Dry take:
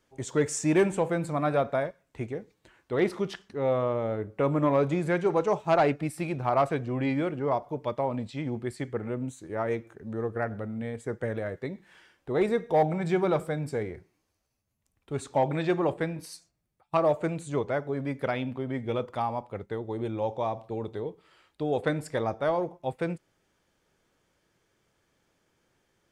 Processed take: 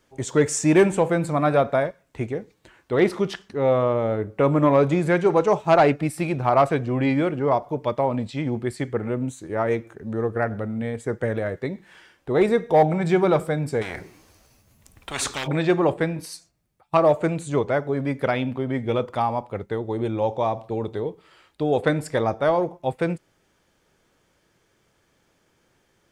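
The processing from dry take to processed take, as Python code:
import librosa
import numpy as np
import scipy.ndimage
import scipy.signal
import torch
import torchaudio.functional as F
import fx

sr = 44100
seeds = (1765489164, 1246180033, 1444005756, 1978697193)

y = fx.spectral_comp(x, sr, ratio=10.0, at=(13.81, 15.46), fade=0.02)
y = y * 10.0 ** (6.5 / 20.0)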